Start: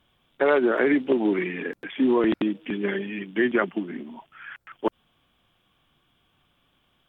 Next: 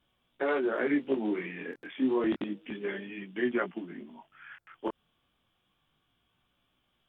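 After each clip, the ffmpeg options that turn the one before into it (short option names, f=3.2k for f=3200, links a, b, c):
-af "flanger=delay=16:depth=7.9:speed=0.3,volume=-5dB"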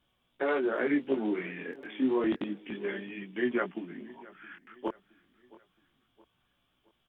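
-af "aecho=1:1:669|1338|2007:0.0841|0.0379|0.017"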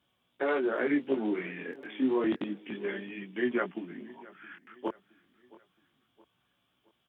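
-af "highpass=91"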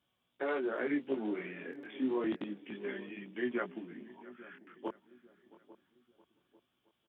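-filter_complex "[0:a]asplit=2[a][b];[b]adelay=845,lowpass=f=810:p=1,volume=-17dB,asplit=2[c][d];[d]adelay=845,lowpass=f=810:p=1,volume=0.4,asplit=2[e][f];[f]adelay=845,lowpass=f=810:p=1,volume=0.4[g];[a][c][e][g]amix=inputs=4:normalize=0,volume=-5.5dB"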